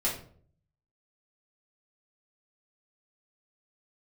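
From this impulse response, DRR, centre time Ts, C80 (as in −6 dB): −6.5 dB, 29 ms, 11.5 dB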